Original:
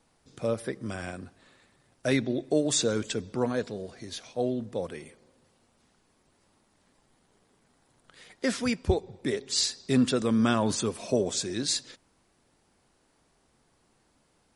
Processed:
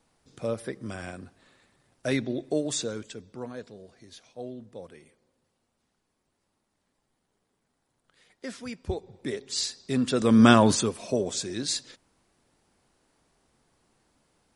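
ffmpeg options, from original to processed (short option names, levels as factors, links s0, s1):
-af "volume=7.5,afade=t=out:st=2.48:d=0.63:silence=0.375837,afade=t=in:st=8.7:d=0.5:silence=0.446684,afade=t=in:st=10.06:d=0.45:silence=0.251189,afade=t=out:st=10.51:d=0.44:silence=0.316228"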